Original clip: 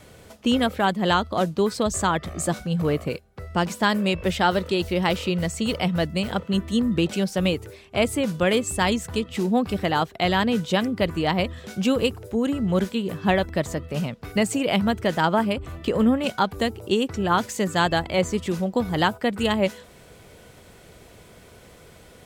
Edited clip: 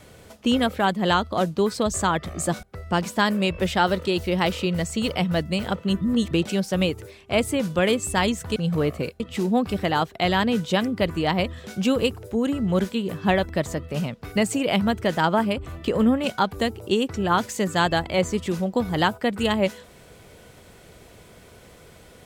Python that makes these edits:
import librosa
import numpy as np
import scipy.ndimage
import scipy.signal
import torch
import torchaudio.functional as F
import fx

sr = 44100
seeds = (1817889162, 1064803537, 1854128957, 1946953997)

y = fx.edit(x, sr, fx.move(start_s=2.63, length_s=0.64, to_s=9.2),
    fx.reverse_span(start_s=6.65, length_s=0.3), tone=tone)